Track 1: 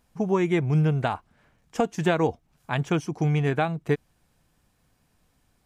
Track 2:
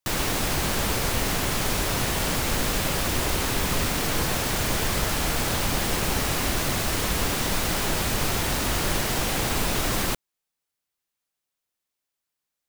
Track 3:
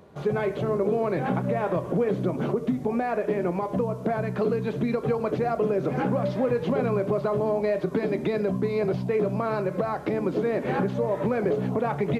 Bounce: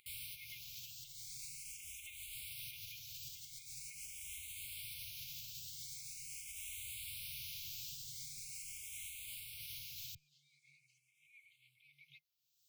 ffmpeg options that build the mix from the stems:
-filter_complex "[0:a]highpass=f=1.3k:w=0.5412,highpass=f=1.3k:w=1.3066,acompressor=threshold=-36dB:ratio=6,aecho=1:1:3.3:0.79,volume=-13dB,asplit=2[a][b];[1:a]highpass=f=86:w=0.5412,highpass=f=86:w=1.3066,aeval=exprs='0.0355*(abs(mod(val(0)/0.0355+3,4)-2)-1)':c=same,volume=-3.5dB[c];[2:a]highpass=630,volume=-15.5dB,asplit=3[d][e][f];[d]atrim=end=6.56,asetpts=PTS-STARTPTS,afade=t=out:st=6.556:d=0.004:c=hsin[g];[e]atrim=start=6.56:end=7.88,asetpts=PTS-STARTPTS,volume=0[h];[f]atrim=start=7.88,asetpts=PTS-STARTPTS,afade=t=in:d=0.004:c=hsin[i];[g][h][i]concat=n=3:v=0:a=1[j];[b]apad=whole_len=559594[k];[c][k]sidechaincompress=threshold=-59dB:ratio=10:attack=35:release=215[l];[l][j]amix=inputs=2:normalize=0,acompressor=mode=upward:threshold=-51dB:ratio=2.5,alimiter=level_in=14.5dB:limit=-24dB:level=0:latency=1:release=43,volume=-14.5dB,volume=0dB[m];[a][m]amix=inputs=2:normalize=0,afftfilt=real='re*(1-between(b*sr/4096,160,2100))':imag='im*(1-between(b*sr/4096,160,2100))':win_size=4096:overlap=0.75,asplit=2[n][o];[o]afreqshift=0.43[p];[n][p]amix=inputs=2:normalize=1"

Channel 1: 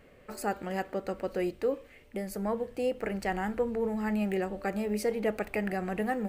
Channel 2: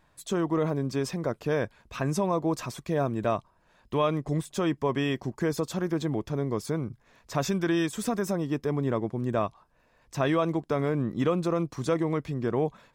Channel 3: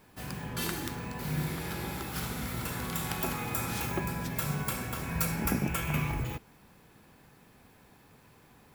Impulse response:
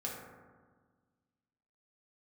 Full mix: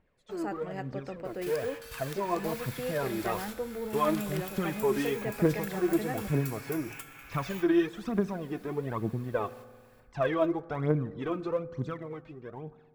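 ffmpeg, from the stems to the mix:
-filter_complex "[0:a]agate=range=-13dB:threshold=-44dB:ratio=16:detection=peak,equalizer=f=12k:w=0.93:g=-12.5,volume=-6dB[a];[1:a]lowpass=2.9k,dynaudnorm=f=320:g=11:m=11dB,aphaser=in_gain=1:out_gain=1:delay=3.3:decay=0.73:speed=1.1:type=triangular,volume=-17dB,asplit=3[b][c][d];[c]volume=-15.5dB[e];[2:a]highpass=1.3k,acompressor=threshold=-45dB:ratio=6,adelay=1250,volume=0.5dB,asplit=2[f][g];[g]volume=-3.5dB[h];[d]apad=whole_len=440910[i];[f][i]sidechaingate=range=-33dB:threshold=-52dB:ratio=16:detection=peak[j];[3:a]atrim=start_sample=2205[k];[e][h]amix=inputs=2:normalize=0[l];[l][k]afir=irnorm=-1:irlink=0[m];[a][b][j][m]amix=inputs=4:normalize=0"

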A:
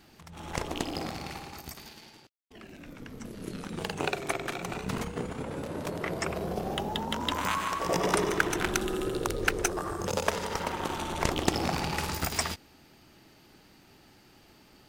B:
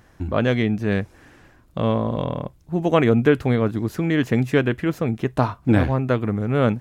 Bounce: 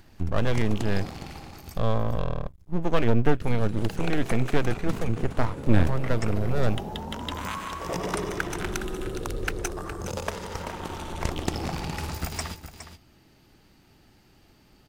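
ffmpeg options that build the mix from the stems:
-filter_complex "[0:a]acompressor=mode=upward:threshold=-54dB:ratio=2.5,volume=-4dB,asplit=3[a][b][c];[a]atrim=end=1.78,asetpts=PTS-STARTPTS,afade=t=out:st=1.776:d=0.004:c=hsin[d];[b]atrim=start=1.78:end=3.41,asetpts=PTS-STARTPTS,volume=0[e];[c]atrim=start=3.41,asetpts=PTS-STARTPTS,afade=t=in:d=0.004:c=hsin[f];[d][e][f]concat=n=3:v=0:a=1,asplit=2[g][h];[h]volume=-11dB[i];[1:a]aeval=exprs='max(val(0),0)':c=same,volume=-4dB[j];[i]aecho=0:1:414:1[k];[g][j][k]amix=inputs=3:normalize=0,lowshelf=f=130:g=10.5"

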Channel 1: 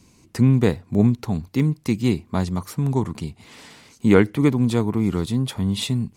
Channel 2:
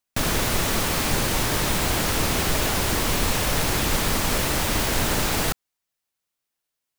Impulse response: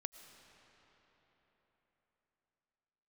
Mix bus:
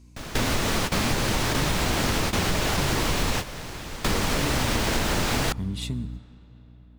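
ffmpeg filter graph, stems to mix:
-filter_complex "[0:a]lowshelf=f=120:g=5,acompressor=threshold=-18dB:ratio=4,volume=-10.5dB,asplit=3[a][b][c];[b]volume=-5dB[d];[1:a]acrossover=split=7500[e][f];[f]acompressor=threshold=-37dB:ratio=4:attack=1:release=60[g];[e][g]amix=inputs=2:normalize=0,aeval=exprs='val(0)+0.0158*(sin(2*PI*60*n/s)+sin(2*PI*2*60*n/s)/2+sin(2*PI*3*60*n/s)/3+sin(2*PI*4*60*n/s)/4+sin(2*PI*5*60*n/s)/5)':c=same,volume=2dB,asplit=2[h][i];[i]volume=-18dB[j];[c]apad=whole_len=308126[k];[h][k]sidechaingate=range=-21dB:threshold=-49dB:ratio=16:detection=peak[l];[2:a]atrim=start_sample=2205[m];[d][j]amix=inputs=2:normalize=0[n];[n][m]afir=irnorm=-1:irlink=0[o];[a][l][o]amix=inputs=3:normalize=0,acompressor=threshold=-20dB:ratio=6"

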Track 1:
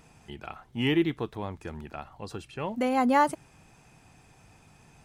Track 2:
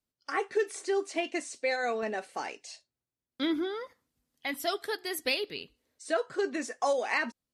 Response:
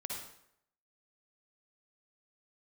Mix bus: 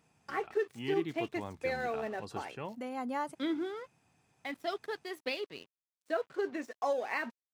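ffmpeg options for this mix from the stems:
-filter_complex "[0:a]volume=-5dB,afade=t=in:st=0.89:d=0.75:silence=0.398107,afade=t=out:st=2.49:d=0.33:silence=0.375837[a];[1:a]aemphasis=mode=reproduction:type=75kf,aeval=exprs='sgn(val(0))*max(abs(val(0))-0.00299,0)':c=same,volume=-3dB[b];[a][b]amix=inputs=2:normalize=0,highpass=100"

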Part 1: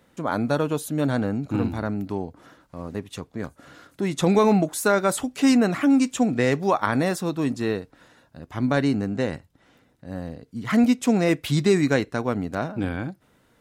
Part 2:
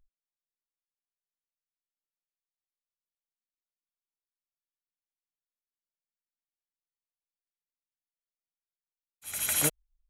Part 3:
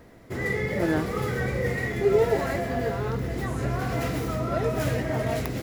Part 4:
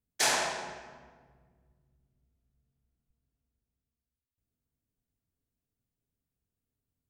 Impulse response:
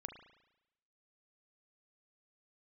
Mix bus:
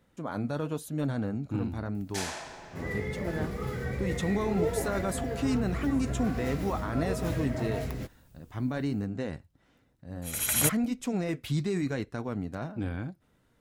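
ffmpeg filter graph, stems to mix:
-filter_complex "[0:a]alimiter=limit=-14.5dB:level=0:latency=1:release=14,flanger=delay=0.5:depth=7.1:regen=-75:speed=1:shape=triangular,volume=-5dB[a];[1:a]adelay=1000,volume=1dB[b];[2:a]flanger=delay=3.7:depth=1.1:regen=-69:speed=0.47:shape=triangular,adelay=2450,volume=-4.5dB[c];[3:a]acompressor=mode=upward:threshold=-31dB:ratio=2.5,adelay=1950,volume=-9dB[d];[a][b][c][d]amix=inputs=4:normalize=0,lowshelf=f=130:g=9.5"

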